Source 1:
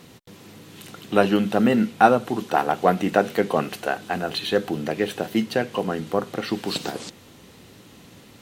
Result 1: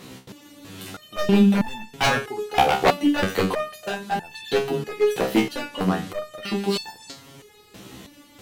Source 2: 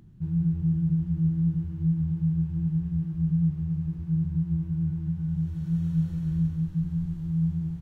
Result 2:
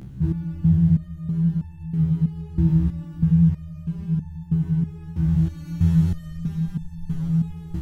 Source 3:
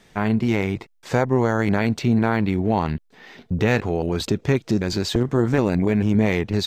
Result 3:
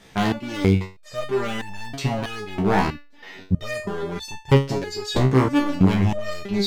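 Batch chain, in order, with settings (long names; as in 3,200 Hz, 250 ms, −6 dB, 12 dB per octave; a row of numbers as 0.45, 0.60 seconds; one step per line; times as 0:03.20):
wave folding −15 dBFS
step-sequenced resonator 3.1 Hz 65–890 Hz
loudness normalisation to −23 LKFS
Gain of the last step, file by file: +13.5, +23.0, +12.5 decibels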